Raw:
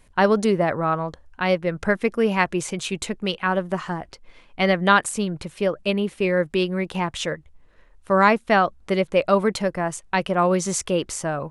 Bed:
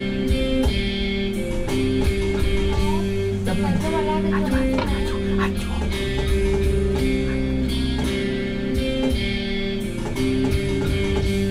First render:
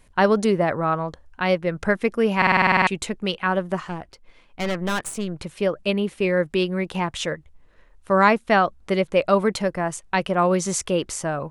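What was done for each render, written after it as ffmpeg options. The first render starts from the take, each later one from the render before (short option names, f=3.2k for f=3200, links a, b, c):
-filter_complex "[0:a]asettb=1/sr,asplit=3[a][b][c];[a]atrim=end=3.804[d];[b]atrim=start=3.8:end=5.38,asetpts=PTS-STARTPTS,afade=t=in:d=0.004:c=qsin,afade=t=out:st=1.576:d=0.004:c=qsin,aeval=exprs='(tanh(11.2*val(0)+0.65)-tanh(0.65))/11.2':c=same[e];[c]atrim=start=5.376[f];[d][e]acrossfade=d=0.004:c1=hsin:c2=qsin[g];[g][f]acrossfade=d=0.004:c1=qsin:c2=hsin,asplit=11[h][i][j][k][l][m][n][o][p][q][r];[h]atrim=end=2.422[s];[i]atrim=start=2.368:end=2.422[t];[j]atrim=start=2.368:end=2.422[u];[k]atrim=start=2.368:end=2.422[v];[l]atrim=start=2.368:end=2.422[w];[m]atrim=start=2.368:end=2.422[x];[n]atrim=start=2.368:end=2.422[y];[o]atrim=start=2.368:end=2.422[z];[p]atrim=start=2.368:end=2.422[aa];[q]atrim=start=2.368:end=2.422[ab];[r]atrim=start=2.868[ac];[s][t]acrossfade=d=0.004:c1=hsin:c2=hsin[ad];[ad][u]acrossfade=d=0.004:c1=hsin:c2=hsin[ae];[ae][v]acrossfade=d=0.004:c1=hsin:c2=hsin[af];[af][w]acrossfade=d=0.004:c1=hsin:c2=hsin[ag];[ag][x]acrossfade=d=0.004:c1=hsin:c2=hsin[ah];[ah][y]acrossfade=d=0.004:c1=hsin:c2=hsin[ai];[ai][z]acrossfade=d=0.004:c1=hsin:c2=hsin[aj];[aj][aa]acrossfade=d=0.004:c1=hsin:c2=hsin[ak];[ak][ab]acrossfade=d=0.004:c1=hsin:c2=hsin[al];[al][ac]acrossfade=d=0.004:c1=hsin:c2=hsin"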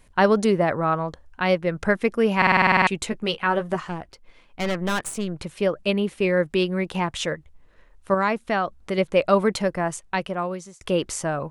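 -filter_complex "[0:a]asettb=1/sr,asplit=3[a][b][c];[a]atrim=end=3.104[d];[b]atrim=start=3.1:end=3.76,asetpts=PTS-STARTPTS,afade=t=in:d=0.004:c=qsin,afade=t=out:st=0.656:d=0.004:c=qsin,asplit=2[e][f];[f]adelay=13,volume=-7dB[g];[e][g]amix=inputs=2:normalize=0,atrim=end_sample=29106[h];[c]atrim=start=3.756[i];[d][h]acrossfade=d=0.004:c1=hsin:c2=qsin[j];[j][i]acrossfade=d=0.004:c1=qsin:c2=hsin,asettb=1/sr,asplit=3[k][l][m];[k]atrim=end=8.144[n];[l]atrim=start=8.14:end=8.98,asetpts=PTS-STARTPTS,afade=t=in:d=0.004:c=qsin,afade=t=out:st=0.836:d=0.004:c=qsin,acompressor=threshold=-28dB:ratio=1.5:attack=3.2:release=140:knee=1:detection=peak[o];[m]atrim=start=8.976[p];[n][o]acrossfade=d=0.004:c1=hsin:c2=qsin[q];[q][p]acrossfade=d=0.004:c1=qsin:c2=hsin,asplit=2[r][s];[r]atrim=end=10.81,asetpts=PTS-STARTPTS,afade=t=out:st=9.87:d=0.94[t];[s]atrim=start=10.81,asetpts=PTS-STARTPTS,afade=t=in:d=0.004:c=hsin[u];[t][u]concat=n=2:v=0:a=1"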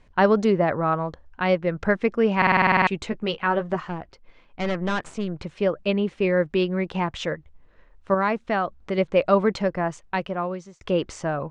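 -af "lowpass=f=7k:w=0.5412,lowpass=f=7k:w=1.3066,highshelf=f=4.2k:g=-10"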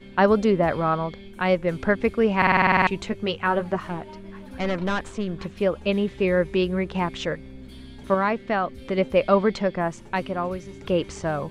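-filter_complex "[1:a]volume=-20dB[a];[0:a][a]amix=inputs=2:normalize=0"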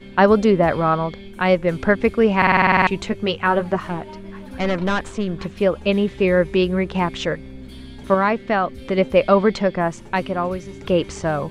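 -af "volume=4.5dB,alimiter=limit=-3dB:level=0:latency=1"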